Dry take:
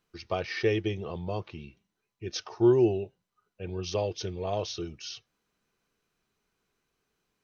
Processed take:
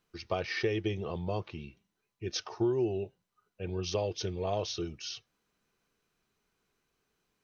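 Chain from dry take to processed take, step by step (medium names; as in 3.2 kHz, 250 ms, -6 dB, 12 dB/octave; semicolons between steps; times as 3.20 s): compression 6:1, threshold -26 dBFS, peak gain reduction 9.5 dB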